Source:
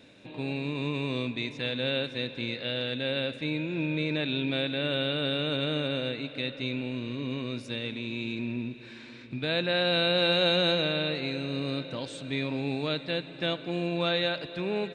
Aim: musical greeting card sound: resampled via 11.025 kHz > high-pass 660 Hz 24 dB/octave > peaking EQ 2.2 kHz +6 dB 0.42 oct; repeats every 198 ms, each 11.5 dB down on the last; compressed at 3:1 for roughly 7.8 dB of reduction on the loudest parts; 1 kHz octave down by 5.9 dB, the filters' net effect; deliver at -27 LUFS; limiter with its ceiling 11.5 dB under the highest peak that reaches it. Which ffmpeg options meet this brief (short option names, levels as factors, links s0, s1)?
-af "equalizer=f=1000:t=o:g=-8,acompressor=threshold=0.0224:ratio=3,alimiter=level_in=2.51:limit=0.0631:level=0:latency=1,volume=0.398,aecho=1:1:198|396|594:0.266|0.0718|0.0194,aresample=11025,aresample=44100,highpass=f=660:w=0.5412,highpass=f=660:w=1.3066,equalizer=f=2200:t=o:w=0.42:g=6,volume=5.96"